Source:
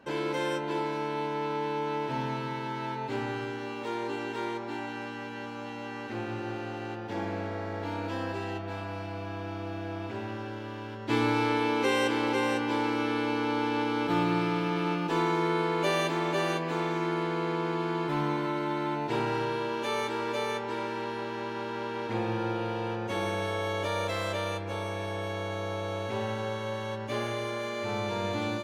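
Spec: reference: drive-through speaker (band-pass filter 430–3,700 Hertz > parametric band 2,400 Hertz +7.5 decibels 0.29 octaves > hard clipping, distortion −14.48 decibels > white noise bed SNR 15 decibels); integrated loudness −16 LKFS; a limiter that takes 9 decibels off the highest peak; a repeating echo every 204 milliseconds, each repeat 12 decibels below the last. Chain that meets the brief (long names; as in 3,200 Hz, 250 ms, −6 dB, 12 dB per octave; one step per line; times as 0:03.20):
brickwall limiter −23.5 dBFS
band-pass filter 430–3,700 Hz
parametric band 2,400 Hz +7.5 dB 0.29 octaves
repeating echo 204 ms, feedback 25%, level −12 dB
hard clipping −31 dBFS
white noise bed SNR 15 dB
level +19.5 dB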